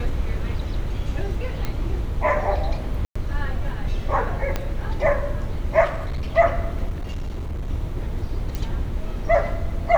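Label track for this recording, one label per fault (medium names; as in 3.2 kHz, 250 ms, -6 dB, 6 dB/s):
1.650000	1.650000	pop -13 dBFS
3.050000	3.150000	dropout 105 ms
4.560000	4.560000	pop -10 dBFS
5.840000	6.370000	clipped -22.5 dBFS
6.890000	7.700000	clipped -24.5 dBFS
8.550000	8.550000	pop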